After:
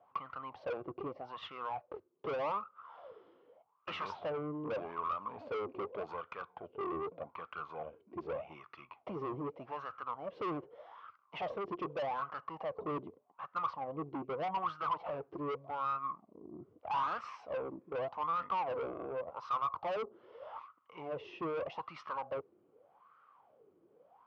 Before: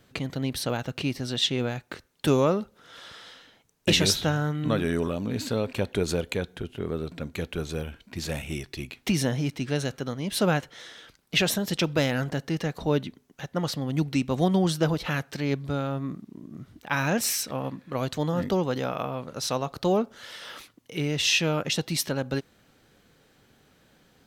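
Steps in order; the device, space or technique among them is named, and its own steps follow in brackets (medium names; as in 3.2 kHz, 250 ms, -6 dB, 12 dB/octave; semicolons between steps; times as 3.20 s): wah-wah guitar rig (wah-wah 0.83 Hz 350–1300 Hz, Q 9.9; valve stage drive 45 dB, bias 0.3; cabinet simulation 87–4100 Hz, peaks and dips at 93 Hz +6 dB, 250 Hz -6 dB, 380 Hz -4 dB, 1.1 kHz +9 dB, 1.7 kHz -9 dB, 3.9 kHz -10 dB); trim +11.5 dB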